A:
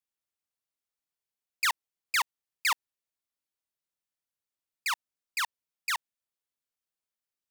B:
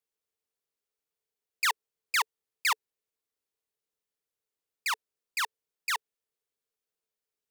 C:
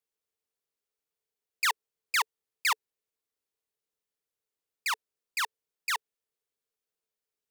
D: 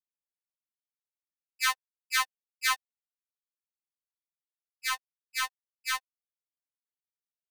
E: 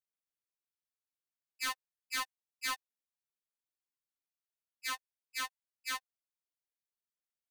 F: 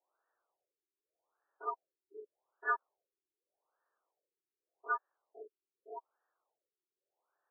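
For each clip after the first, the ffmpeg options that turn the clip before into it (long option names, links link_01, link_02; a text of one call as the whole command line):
ffmpeg -i in.wav -af "equalizer=frequency=440:width=4.3:gain=14.5" out.wav
ffmpeg -i in.wav -af anull out.wav
ffmpeg -i in.wav -af "aeval=exprs='sgn(val(0))*max(abs(val(0))-0.00596,0)':channel_layout=same,afftfilt=real='re*3.46*eq(mod(b,12),0)':imag='im*3.46*eq(mod(b,12),0)':win_size=2048:overlap=0.75,volume=3.5dB" out.wav
ffmpeg -i in.wav -af "volume=26.5dB,asoftclip=hard,volume=-26.5dB,volume=-5dB" out.wav
ffmpeg -i in.wav -filter_complex "[0:a]asplit=2[link_01][link_02];[link_02]highpass=frequency=720:poles=1,volume=22dB,asoftclip=type=tanh:threshold=-31dB[link_03];[link_01][link_03]amix=inputs=2:normalize=0,lowpass=frequency=1100:poles=1,volume=-6dB,highpass=frequency=150:width_type=q:width=0.5412,highpass=frequency=150:width_type=q:width=1.307,lowpass=frequency=3000:width_type=q:width=0.5176,lowpass=frequency=3000:width_type=q:width=0.7071,lowpass=frequency=3000:width_type=q:width=1.932,afreqshift=170,afftfilt=real='re*lt(b*sr/1024,410*pow(1900/410,0.5+0.5*sin(2*PI*0.84*pts/sr)))':imag='im*lt(b*sr/1024,410*pow(1900/410,0.5+0.5*sin(2*PI*0.84*pts/sr)))':win_size=1024:overlap=0.75,volume=10dB" out.wav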